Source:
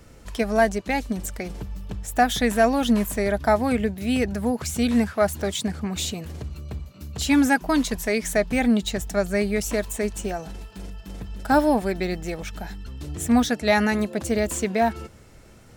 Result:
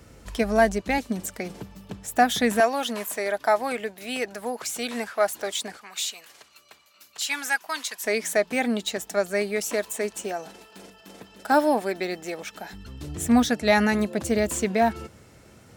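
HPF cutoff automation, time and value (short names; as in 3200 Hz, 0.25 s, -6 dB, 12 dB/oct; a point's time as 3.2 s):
42 Hz
from 0.98 s 150 Hz
from 2.6 s 510 Hz
from 5.77 s 1200 Hz
from 8.04 s 320 Hz
from 12.73 s 80 Hz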